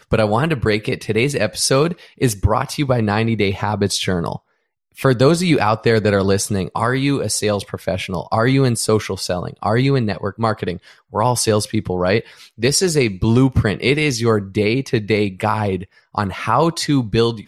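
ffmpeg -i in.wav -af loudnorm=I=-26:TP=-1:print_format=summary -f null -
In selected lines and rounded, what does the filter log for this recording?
Input Integrated:    -18.3 LUFS
Input True Peak:      -3.2 dBTP
Input LRA:             2.0 LU
Input Threshold:     -28.4 LUFS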